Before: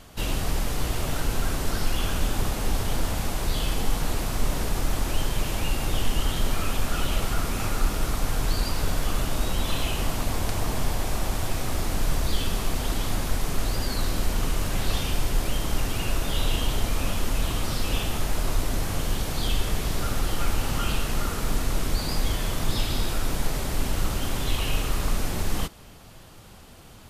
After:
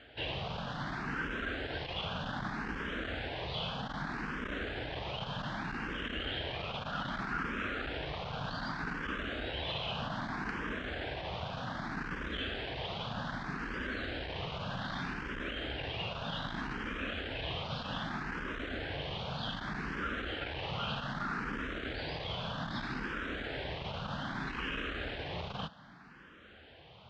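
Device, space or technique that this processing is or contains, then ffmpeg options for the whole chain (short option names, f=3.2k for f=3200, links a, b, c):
barber-pole phaser into a guitar amplifier: -filter_complex "[0:a]asplit=2[a][b];[b]afreqshift=0.64[c];[a][c]amix=inputs=2:normalize=1,asoftclip=type=tanh:threshold=-19.5dB,highpass=94,equalizer=f=100:t=q:w=4:g=-7,equalizer=f=360:t=q:w=4:g=-3,equalizer=f=1.6k:t=q:w=4:g=9,equalizer=f=3.2k:t=q:w=4:g=3,lowpass=f=3.7k:w=0.5412,lowpass=f=3.7k:w=1.3066,volume=-2.5dB"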